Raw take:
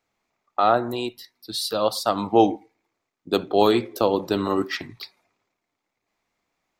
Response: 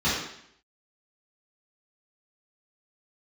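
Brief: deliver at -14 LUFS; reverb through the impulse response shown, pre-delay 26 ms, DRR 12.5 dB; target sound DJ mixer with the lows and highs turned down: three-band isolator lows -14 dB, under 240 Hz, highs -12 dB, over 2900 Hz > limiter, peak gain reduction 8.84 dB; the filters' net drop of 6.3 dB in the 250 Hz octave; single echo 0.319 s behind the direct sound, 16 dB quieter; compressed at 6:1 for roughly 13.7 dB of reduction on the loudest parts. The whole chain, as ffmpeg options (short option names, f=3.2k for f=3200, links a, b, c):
-filter_complex "[0:a]equalizer=f=250:t=o:g=-6,acompressor=threshold=-28dB:ratio=6,aecho=1:1:319:0.158,asplit=2[a][b];[1:a]atrim=start_sample=2205,adelay=26[c];[b][c]afir=irnorm=-1:irlink=0,volume=-27dB[d];[a][d]amix=inputs=2:normalize=0,acrossover=split=240 2900:gain=0.2 1 0.251[e][f][g];[e][f][g]amix=inputs=3:normalize=0,volume=23dB,alimiter=limit=-1dB:level=0:latency=1"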